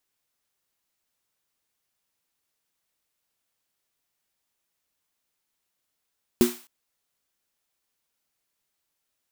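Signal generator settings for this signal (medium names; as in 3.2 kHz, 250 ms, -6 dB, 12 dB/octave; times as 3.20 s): snare drum length 0.26 s, tones 240 Hz, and 360 Hz, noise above 680 Hz, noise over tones -12 dB, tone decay 0.23 s, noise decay 0.47 s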